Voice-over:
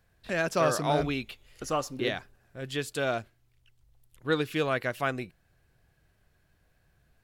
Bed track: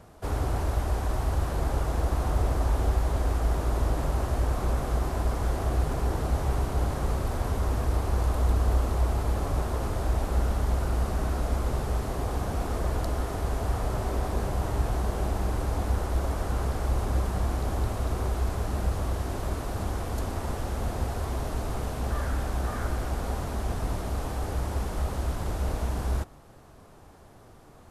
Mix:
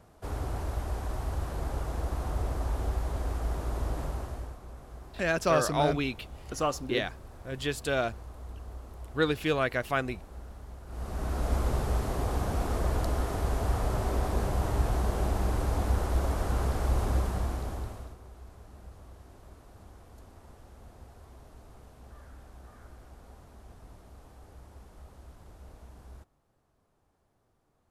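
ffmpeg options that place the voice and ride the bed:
-filter_complex "[0:a]adelay=4900,volume=1.06[s0];[1:a]volume=4.22,afade=t=out:st=4.02:d=0.57:silence=0.223872,afade=t=in:st=10.86:d=0.69:silence=0.11885,afade=t=out:st=17.08:d=1.09:silence=0.0944061[s1];[s0][s1]amix=inputs=2:normalize=0"

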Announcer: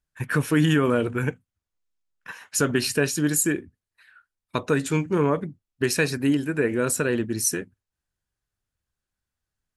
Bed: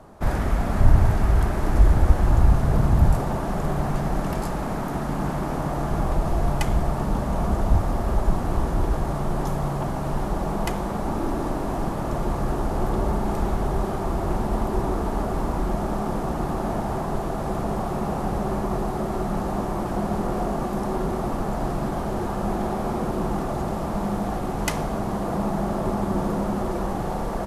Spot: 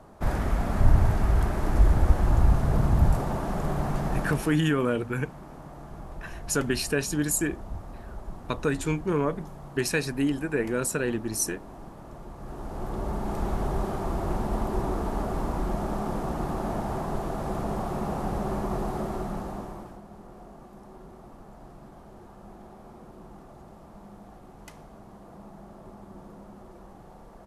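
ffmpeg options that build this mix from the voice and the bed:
-filter_complex "[0:a]adelay=3950,volume=0.631[s0];[1:a]volume=3.16,afade=t=out:st=4.2:d=0.39:silence=0.199526,afade=t=in:st=12.36:d=1.24:silence=0.211349,afade=t=out:st=18.97:d=1.04:silence=0.133352[s1];[s0][s1]amix=inputs=2:normalize=0"

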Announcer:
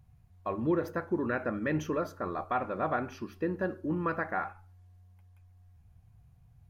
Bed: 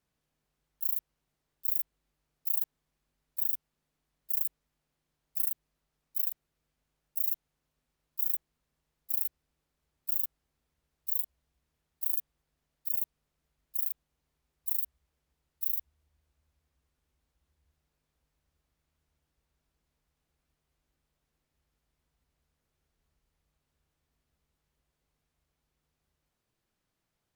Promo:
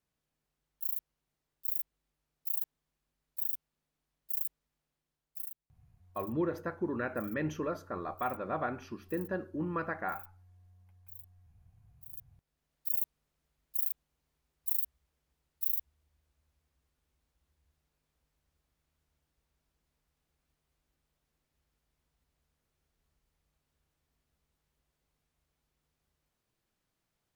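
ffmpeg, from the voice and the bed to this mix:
-filter_complex "[0:a]adelay=5700,volume=0.668[s0];[1:a]volume=5.62,afade=t=out:st=4.86:d=0.86:silence=0.16788,afade=t=in:st=12.1:d=0.7:silence=0.112202[s1];[s0][s1]amix=inputs=2:normalize=0"

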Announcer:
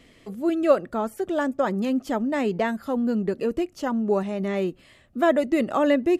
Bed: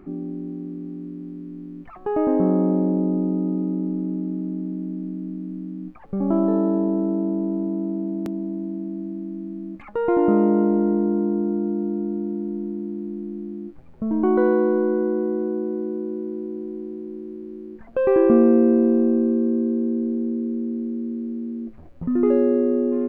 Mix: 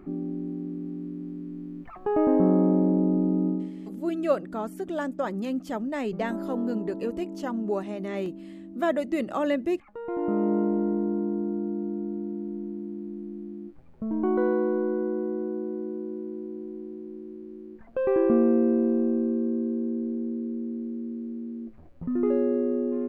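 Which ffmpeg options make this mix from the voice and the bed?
-filter_complex "[0:a]adelay=3600,volume=0.531[s0];[1:a]volume=2.11,afade=t=out:st=3.47:d=0.24:silence=0.237137,afade=t=in:st=10.05:d=0.48:silence=0.398107[s1];[s0][s1]amix=inputs=2:normalize=0"

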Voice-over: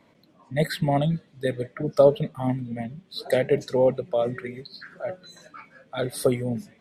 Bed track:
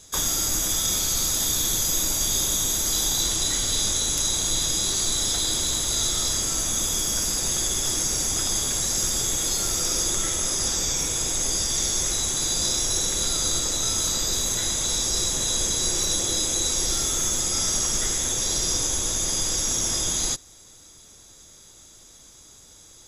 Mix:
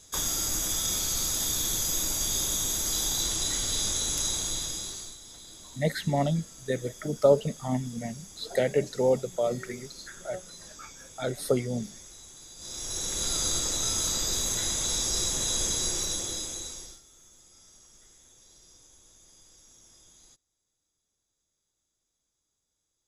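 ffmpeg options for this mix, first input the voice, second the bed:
-filter_complex "[0:a]adelay=5250,volume=0.668[s0];[1:a]volume=5.31,afade=t=out:st=4.27:d=0.91:silence=0.11885,afade=t=in:st=12.57:d=0.79:silence=0.105925,afade=t=out:st=15.72:d=1.29:silence=0.0398107[s1];[s0][s1]amix=inputs=2:normalize=0"

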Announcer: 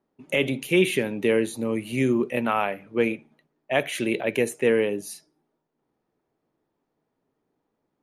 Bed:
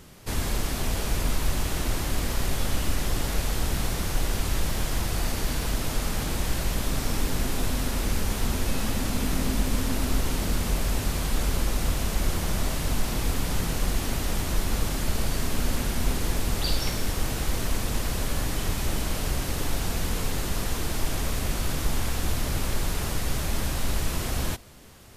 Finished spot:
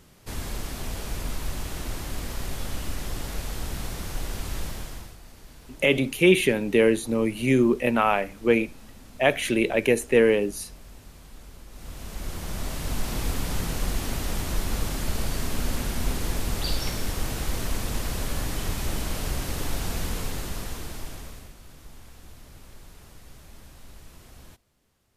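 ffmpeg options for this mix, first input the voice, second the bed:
-filter_complex "[0:a]adelay=5500,volume=1.33[s0];[1:a]volume=4.73,afade=t=out:st=4.63:d=0.54:silence=0.177828,afade=t=in:st=11.69:d=1.48:silence=0.112202,afade=t=out:st=20.01:d=1.53:silence=0.112202[s1];[s0][s1]amix=inputs=2:normalize=0"

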